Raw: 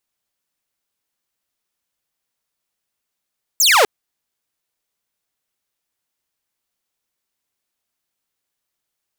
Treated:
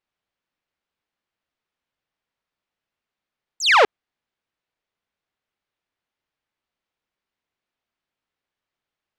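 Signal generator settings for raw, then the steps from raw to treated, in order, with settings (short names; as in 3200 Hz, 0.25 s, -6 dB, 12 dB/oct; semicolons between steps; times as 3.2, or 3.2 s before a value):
laser zap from 7900 Hz, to 380 Hz, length 0.25 s saw, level -7 dB
LPF 3100 Hz 12 dB/oct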